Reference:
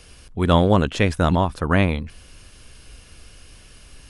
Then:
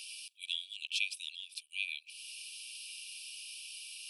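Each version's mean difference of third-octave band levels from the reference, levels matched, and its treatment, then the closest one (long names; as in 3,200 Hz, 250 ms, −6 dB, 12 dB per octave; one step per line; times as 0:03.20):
21.5 dB: parametric band 6,800 Hz −11 dB 0.25 octaves
downward compressor 2 to 1, threshold −34 dBFS, peak gain reduction 13 dB
linear-phase brick-wall high-pass 2,300 Hz
level +6 dB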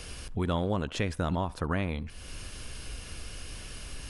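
9.0 dB: in parallel at −3 dB: brickwall limiter −10.5 dBFS, peak gain reduction 8 dB
on the sum: downward compressor 2.5 to 1, threshold −34 dBFS, peak gain reduction 17 dB
feedback echo with a band-pass in the loop 69 ms, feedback 47%, band-pass 1,000 Hz, level −20.5 dB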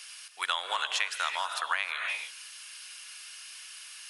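16.0 dB: Bessel high-pass filter 1,700 Hz, order 4
reverb whose tail is shaped and stops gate 340 ms rising, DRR 8.5 dB
downward compressor 5 to 1, threshold −32 dBFS, peak gain reduction 10.5 dB
level +5.5 dB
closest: second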